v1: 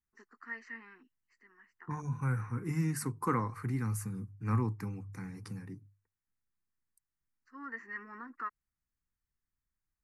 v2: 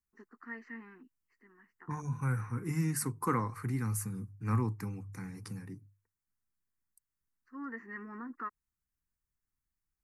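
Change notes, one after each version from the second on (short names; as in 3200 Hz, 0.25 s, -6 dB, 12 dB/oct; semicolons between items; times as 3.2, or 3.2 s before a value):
first voice: add tilt -3.5 dB/oct; second voice: add high shelf 7100 Hz +7.5 dB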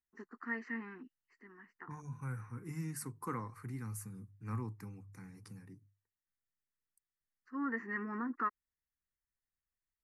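first voice +5.0 dB; second voice -9.0 dB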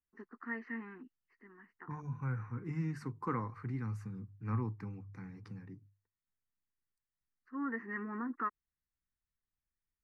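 second voice +4.5 dB; master: add air absorption 220 m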